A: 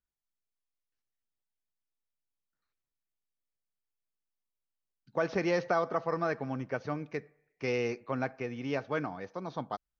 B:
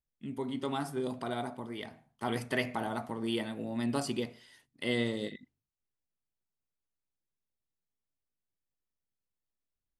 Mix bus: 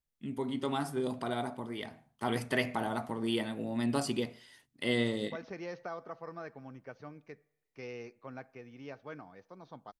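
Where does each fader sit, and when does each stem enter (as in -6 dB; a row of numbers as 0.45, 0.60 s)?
-12.5, +1.0 dB; 0.15, 0.00 s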